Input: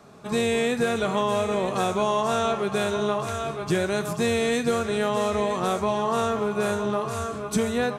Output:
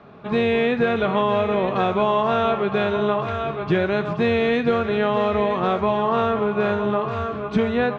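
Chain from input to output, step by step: LPF 3300 Hz 24 dB/oct; gain +4 dB

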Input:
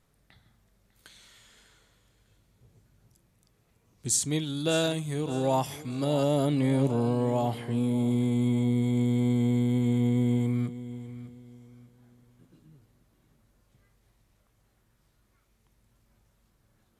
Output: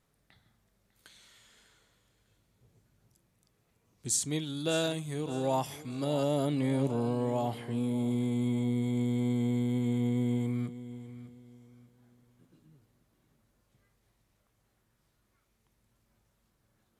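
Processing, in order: low shelf 82 Hz -6.5 dB; gain -3.5 dB

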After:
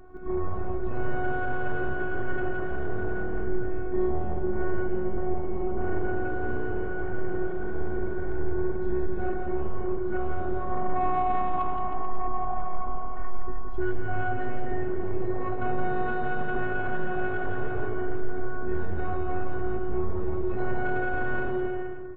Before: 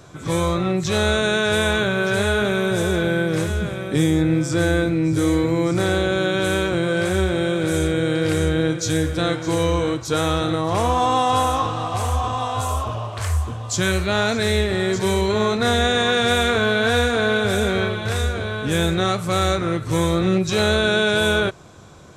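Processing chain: LPF 1800 Hz 24 dB/oct; tilt -3 dB/oct; robotiser 366 Hz; soft clip -12 dBFS, distortion -15 dB; bouncing-ball echo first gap 0.17 s, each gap 0.85×, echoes 5; on a send at -11 dB: reverb RT60 1.9 s, pre-delay 73 ms; on the sum: gain -5.5 dB

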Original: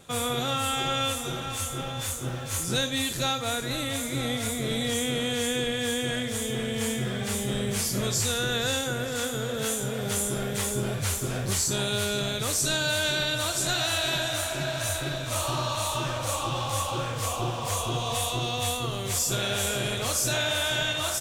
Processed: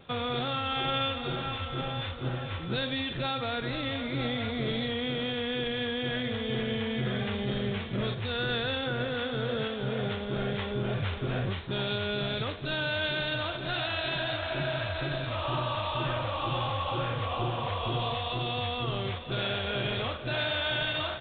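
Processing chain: limiter -20.5 dBFS, peak gain reduction 4.5 dB; vibrato 1 Hz 10 cents; G.726 32 kbps 8000 Hz

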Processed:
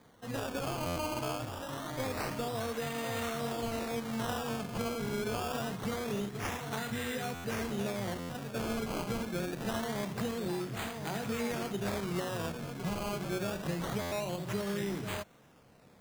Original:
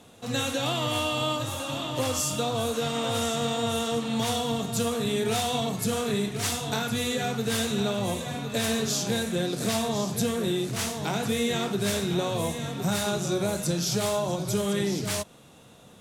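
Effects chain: decimation with a swept rate 16×, swing 100% 0.25 Hz; stuck buffer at 0.86/7.34/8.19/14.01, samples 512, times 8; gain -8 dB

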